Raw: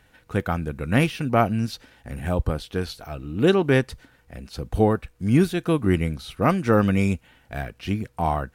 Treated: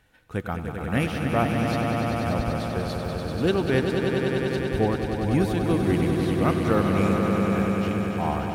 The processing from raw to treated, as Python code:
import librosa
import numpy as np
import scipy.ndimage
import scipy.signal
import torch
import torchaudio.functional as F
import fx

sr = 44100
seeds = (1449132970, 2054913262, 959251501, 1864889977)

y = fx.echo_swell(x, sr, ms=97, loudest=5, wet_db=-7)
y = y * librosa.db_to_amplitude(-5.0)